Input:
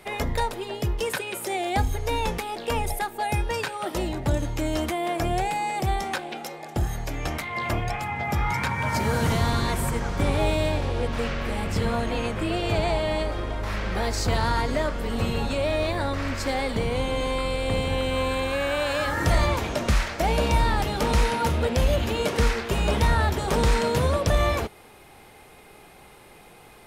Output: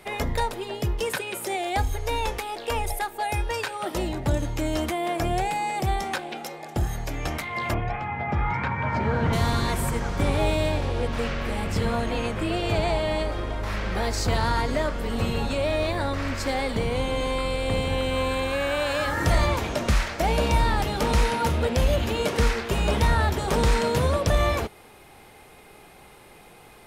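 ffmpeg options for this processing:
-filter_complex "[0:a]asettb=1/sr,asplit=3[a][b][c];[a]atrim=end=1.554[d];[b]atrim=start=1.55:end=3.71,asetpts=PTS-STARTPTS,afade=t=in:d=0.004:c=qsin,afade=t=out:st=2.156:d=0.004:c=qsin,equalizer=f=180:t=o:w=0.77:g=-14.5[e];[c]atrim=start=3.706[f];[d][e]acrossfade=d=0.004:c1=hsin:c2=qsin[g];[g][f]acrossfade=d=0.004:c1=qsin:c2=hsin,asettb=1/sr,asplit=3[h][i][j];[h]atrim=end=7.744[k];[i]atrim=start=7.74:end=9.33,asetpts=PTS-STARTPTS,afade=t=in:d=0.004:c=qsin,afade=t=out:st=1.586:d=0.004:c=qsin,lowpass=2.3k[l];[j]atrim=start=9.326[m];[k][l]acrossfade=d=0.004:c1=hsin:c2=qsin[n];[n][m]acrossfade=d=0.004:c1=qsin:c2=hsin"

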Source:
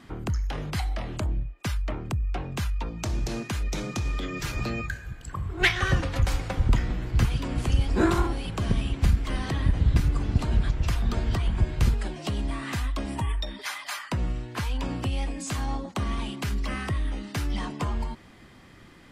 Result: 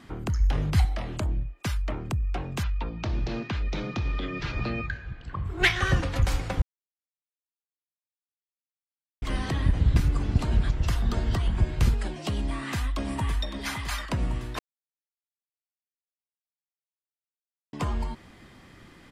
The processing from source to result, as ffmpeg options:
-filter_complex "[0:a]asettb=1/sr,asplit=3[a][b][c];[a]atrim=end=0.404[d];[b]atrim=start=0.4:end=0.85,asetpts=PTS-STARTPTS,afade=t=in:d=0.004:c=qsin,afade=t=out:st=0.446:d=0.004:c=qsin,equalizer=f=74:t=o:w=2.4:g=10[e];[c]atrim=start=0.846[f];[d][e]acrossfade=d=0.004:c1=hsin:c2=qsin[g];[g][f]acrossfade=d=0.004:c1=qsin:c2=hsin,asplit=3[h][i][j];[h]afade=t=out:st=2.62:d=0.02[k];[i]lowpass=f=4.4k:w=0.5412,lowpass=f=4.4k:w=1.3066,afade=t=in:st=2.62:d=0.02,afade=t=out:st=5.44:d=0.02[l];[j]afade=t=in:st=5.44:d=0.02[m];[k][l][m]amix=inputs=3:normalize=0,asettb=1/sr,asplit=3[n][o][p];[n]atrim=end=10.774[q];[o]atrim=start=10.77:end=11.57,asetpts=PTS-STARTPTS,afade=t=in:d=0.004:c=qsin,afade=t=out:st=0.796:d=0.004:c=qsin,bandreject=f=2.4k:w=12[r];[p]atrim=start=11.566[s];[q][r]acrossfade=d=0.004:c1=hsin:c2=qsin[t];[t][s]acrossfade=d=0.004:c1=qsin:c2=hsin,asplit=2[u][v];[v]afade=t=in:st=12.43:d=0.01,afade=t=out:st=13.49:d=0.01,aecho=0:1:560|1120|1680|2240|2800|3360|3920|4480|5040:0.398107|0.25877|0.1682|0.10933|0.0710646|0.046192|0.0300248|0.0195161|0.0126855[w];[u][w]amix=inputs=2:normalize=0,asplit=5[x][y][z][aa][ab];[x]atrim=end=6.62,asetpts=PTS-STARTPTS,afade=t=out:st=6.616:d=0.004:c=hsin[ac];[y]atrim=start=6.62:end=9.22,asetpts=PTS-STARTPTS,volume=0[ad];[z]atrim=start=9.22:end=14.59,asetpts=PTS-STARTPTS,afade=t=in:d=0.004:c=hsin,afade=t=out:st=5.366:d=0.004:c=hsin[ae];[aa]atrim=start=14.59:end=17.73,asetpts=PTS-STARTPTS,volume=0[af];[ab]atrim=start=17.73,asetpts=PTS-STARTPTS,afade=t=in:d=0.004:c=hsin[ag];[ac][ad][ae][af][ag]concat=n=5:v=0:a=1"

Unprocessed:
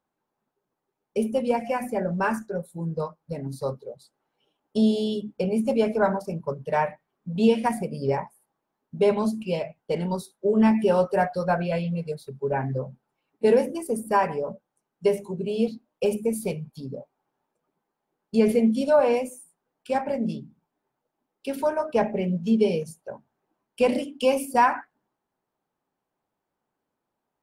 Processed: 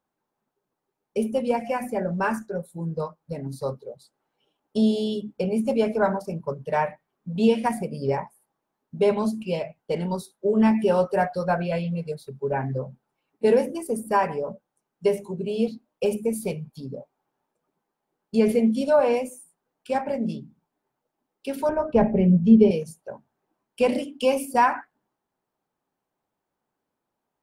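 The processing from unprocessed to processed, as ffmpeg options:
-filter_complex "[0:a]asettb=1/sr,asplit=3[a][b][c];[a]atrim=end=21.694[d];[b]atrim=start=21.69:end=22.71,asetpts=PTS-STARTPTS,afade=t=in:d=0.004:c=qsin,afade=t=out:st=1.016:d=0.004:c=qsin,aemphasis=mode=reproduction:type=riaa[e];[c]atrim=start=22.706[f];[d][e]acrossfade=d=0.004:c1=hsin:c2=qsin[g];[g][f]acrossfade=d=0.004:c1=qsin:c2=hsin"

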